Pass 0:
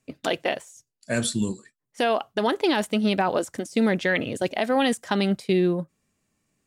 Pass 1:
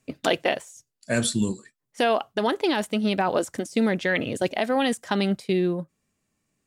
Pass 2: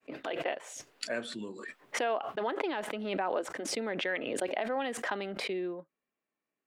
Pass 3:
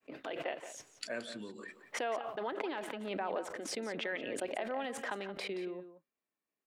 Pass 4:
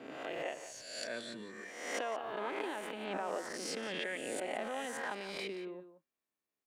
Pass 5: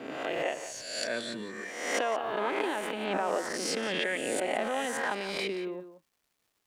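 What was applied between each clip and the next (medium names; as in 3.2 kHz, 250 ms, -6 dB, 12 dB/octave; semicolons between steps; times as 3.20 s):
gain riding 0.5 s
fade-in on the opening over 0.55 s; three-band isolator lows -24 dB, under 280 Hz, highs -21 dB, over 3.1 kHz; swell ahead of each attack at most 35 dB/s; trim -8.5 dB
echo from a far wall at 30 m, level -11 dB; trim -5 dB
reverse spectral sustain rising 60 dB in 1.00 s; trim -4 dB
crackle 440 per s -70 dBFS; trim +8 dB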